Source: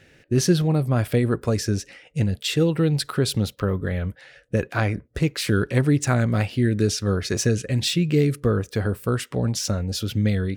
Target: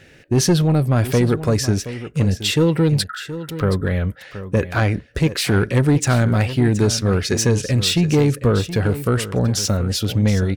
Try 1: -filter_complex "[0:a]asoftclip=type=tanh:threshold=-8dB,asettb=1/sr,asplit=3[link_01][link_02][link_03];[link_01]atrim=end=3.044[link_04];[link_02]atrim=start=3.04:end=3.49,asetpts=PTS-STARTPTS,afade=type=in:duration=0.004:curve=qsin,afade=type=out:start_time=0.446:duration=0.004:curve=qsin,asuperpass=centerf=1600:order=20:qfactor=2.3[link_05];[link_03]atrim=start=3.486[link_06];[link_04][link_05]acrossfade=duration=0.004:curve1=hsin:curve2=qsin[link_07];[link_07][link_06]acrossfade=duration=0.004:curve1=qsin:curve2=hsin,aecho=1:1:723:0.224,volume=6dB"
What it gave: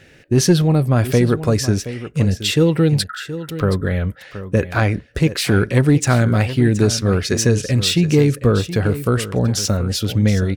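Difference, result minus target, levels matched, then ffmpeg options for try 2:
soft clipping: distortion −11 dB
-filter_complex "[0:a]asoftclip=type=tanh:threshold=-15dB,asettb=1/sr,asplit=3[link_01][link_02][link_03];[link_01]atrim=end=3.044[link_04];[link_02]atrim=start=3.04:end=3.49,asetpts=PTS-STARTPTS,afade=type=in:duration=0.004:curve=qsin,afade=type=out:start_time=0.446:duration=0.004:curve=qsin,asuperpass=centerf=1600:order=20:qfactor=2.3[link_05];[link_03]atrim=start=3.486[link_06];[link_04][link_05]acrossfade=duration=0.004:curve1=hsin:curve2=qsin[link_07];[link_07][link_06]acrossfade=duration=0.004:curve1=qsin:curve2=hsin,aecho=1:1:723:0.224,volume=6dB"

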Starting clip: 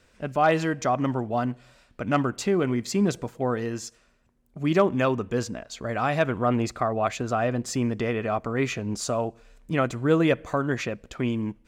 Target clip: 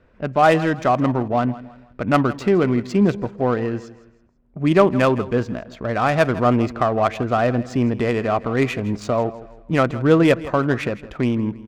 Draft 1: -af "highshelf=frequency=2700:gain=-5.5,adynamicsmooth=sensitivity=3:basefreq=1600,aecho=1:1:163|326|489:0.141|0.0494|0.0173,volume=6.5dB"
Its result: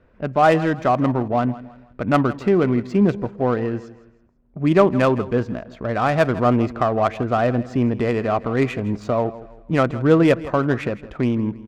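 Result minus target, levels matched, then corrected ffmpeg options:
4,000 Hz band −2.5 dB
-af "adynamicsmooth=sensitivity=3:basefreq=1600,aecho=1:1:163|326|489:0.141|0.0494|0.0173,volume=6.5dB"

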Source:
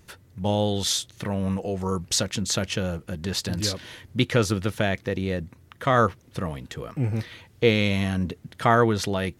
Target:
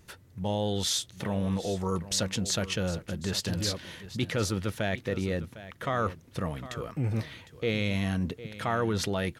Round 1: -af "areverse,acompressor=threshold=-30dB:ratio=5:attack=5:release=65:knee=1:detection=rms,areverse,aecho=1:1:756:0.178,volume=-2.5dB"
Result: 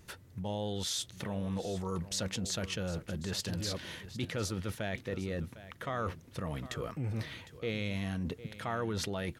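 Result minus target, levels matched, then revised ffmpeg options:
downward compressor: peak gain reduction +7 dB
-af "areverse,acompressor=threshold=-21.5dB:ratio=5:attack=5:release=65:knee=1:detection=rms,areverse,aecho=1:1:756:0.178,volume=-2.5dB"

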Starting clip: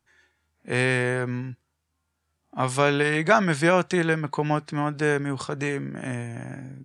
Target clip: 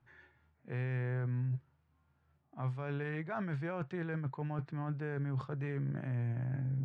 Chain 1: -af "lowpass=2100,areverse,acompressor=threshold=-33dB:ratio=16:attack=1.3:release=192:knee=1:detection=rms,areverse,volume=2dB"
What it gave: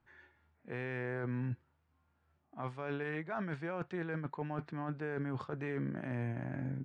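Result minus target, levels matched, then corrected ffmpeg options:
125 Hz band −4.0 dB
-af "lowpass=2100,equalizer=frequency=130:width_type=o:width=0.45:gain=13,areverse,acompressor=threshold=-33dB:ratio=16:attack=1.3:release=192:knee=1:detection=rms,areverse,volume=2dB"

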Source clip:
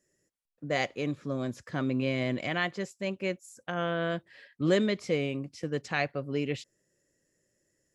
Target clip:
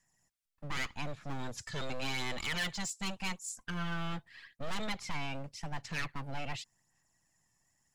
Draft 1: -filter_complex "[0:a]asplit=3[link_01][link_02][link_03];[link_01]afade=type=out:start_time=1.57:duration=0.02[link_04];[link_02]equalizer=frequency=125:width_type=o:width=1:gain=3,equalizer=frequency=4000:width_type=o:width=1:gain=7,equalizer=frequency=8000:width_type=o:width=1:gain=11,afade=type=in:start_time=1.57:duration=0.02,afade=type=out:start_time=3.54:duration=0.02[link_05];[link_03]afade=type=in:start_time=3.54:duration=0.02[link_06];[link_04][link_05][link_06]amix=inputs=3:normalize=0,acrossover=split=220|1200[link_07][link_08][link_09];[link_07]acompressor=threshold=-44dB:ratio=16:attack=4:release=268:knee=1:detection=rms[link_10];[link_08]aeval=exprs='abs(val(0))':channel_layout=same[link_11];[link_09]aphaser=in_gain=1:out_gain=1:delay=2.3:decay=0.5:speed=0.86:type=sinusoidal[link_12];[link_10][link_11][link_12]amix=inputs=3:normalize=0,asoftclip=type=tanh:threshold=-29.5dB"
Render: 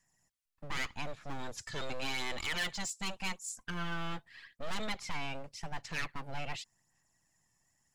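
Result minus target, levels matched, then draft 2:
downward compressor: peak gain reduction +7 dB
-filter_complex "[0:a]asplit=3[link_01][link_02][link_03];[link_01]afade=type=out:start_time=1.57:duration=0.02[link_04];[link_02]equalizer=frequency=125:width_type=o:width=1:gain=3,equalizer=frequency=4000:width_type=o:width=1:gain=7,equalizer=frequency=8000:width_type=o:width=1:gain=11,afade=type=in:start_time=1.57:duration=0.02,afade=type=out:start_time=3.54:duration=0.02[link_05];[link_03]afade=type=in:start_time=3.54:duration=0.02[link_06];[link_04][link_05][link_06]amix=inputs=3:normalize=0,acrossover=split=220|1200[link_07][link_08][link_09];[link_07]acompressor=threshold=-36.5dB:ratio=16:attack=4:release=268:knee=1:detection=rms[link_10];[link_08]aeval=exprs='abs(val(0))':channel_layout=same[link_11];[link_09]aphaser=in_gain=1:out_gain=1:delay=2.3:decay=0.5:speed=0.86:type=sinusoidal[link_12];[link_10][link_11][link_12]amix=inputs=3:normalize=0,asoftclip=type=tanh:threshold=-29.5dB"

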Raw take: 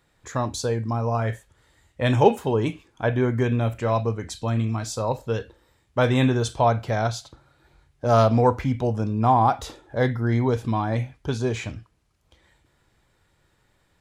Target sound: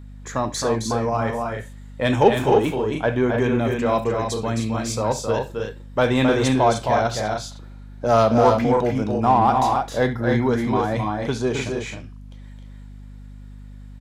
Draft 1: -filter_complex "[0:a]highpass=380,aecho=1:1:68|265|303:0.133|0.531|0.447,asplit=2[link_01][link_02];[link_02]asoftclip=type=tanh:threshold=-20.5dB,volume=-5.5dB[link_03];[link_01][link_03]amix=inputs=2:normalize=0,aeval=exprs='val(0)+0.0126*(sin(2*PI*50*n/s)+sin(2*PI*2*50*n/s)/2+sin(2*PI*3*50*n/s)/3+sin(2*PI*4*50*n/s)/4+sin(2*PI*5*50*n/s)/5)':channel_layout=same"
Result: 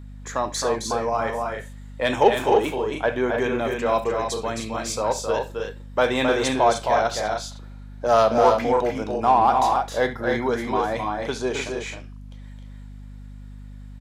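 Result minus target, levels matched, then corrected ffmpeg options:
125 Hz band −8.5 dB
-filter_complex "[0:a]highpass=160,aecho=1:1:68|265|303:0.133|0.531|0.447,asplit=2[link_01][link_02];[link_02]asoftclip=type=tanh:threshold=-20.5dB,volume=-5.5dB[link_03];[link_01][link_03]amix=inputs=2:normalize=0,aeval=exprs='val(0)+0.0126*(sin(2*PI*50*n/s)+sin(2*PI*2*50*n/s)/2+sin(2*PI*3*50*n/s)/3+sin(2*PI*4*50*n/s)/4+sin(2*PI*5*50*n/s)/5)':channel_layout=same"

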